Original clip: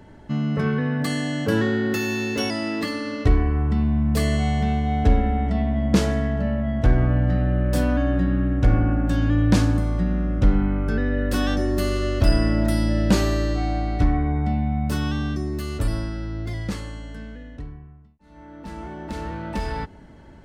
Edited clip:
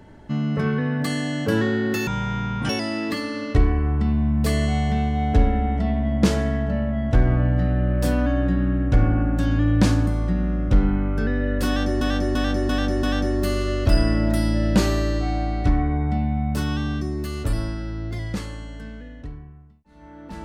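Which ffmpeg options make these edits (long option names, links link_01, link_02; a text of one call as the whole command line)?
ffmpeg -i in.wav -filter_complex "[0:a]asplit=7[link_01][link_02][link_03][link_04][link_05][link_06][link_07];[link_01]atrim=end=2.074[link_08];[link_02]atrim=start=2.07:end=2.4,asetpts=PTS-STARTPTS,asetrate=23373,aresample=44100,atrim=end_sample=27458,asetpts=PTS-STARTPTS[link_09];[link_03]atrim=start=2.396:end=11.722[link_10];[link_04]atrim=start=11.378:end=11.722[link_11];[link_05]atrim=start=11.378:end=11.722[link_12];[link_06]atrim=start=11.378:end=11.722[link_13];[link_07]atrim=start=11.378[link_14];[link_08][link_09]acrossfade=duration=0.004:curve1=hsin:curve2=hsin[link_15];[link_15][link_10]acrossfade=duration=0.004:curve1=hsin:curve2=hsin[link_16];[link_16][link_11]acrossfade=duration=0.004:curve1=hsin:curve2=hsin[link_17];[link_17][link_12]acrossfade=duration=0.004:curve1=hsin:curve2=hsin[link_18];[link_18][link_13]acrossfade=duration=0.004:curve1=hsin:curve2=hsin[link_19];[link_19][link_14]acrossfade=duration=0.004:curve1=hsin:curve2=hsin" out.wav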